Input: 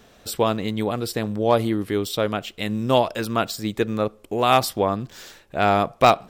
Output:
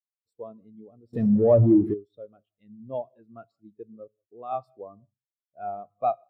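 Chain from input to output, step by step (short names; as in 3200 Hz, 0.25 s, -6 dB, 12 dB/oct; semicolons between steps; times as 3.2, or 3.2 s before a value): non-linear reverb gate 0.21 s flat, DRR 11.5 dB; 1.13–1.94 power-law curve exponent 0.35; spectral expander 2.5:1; gain -5 dB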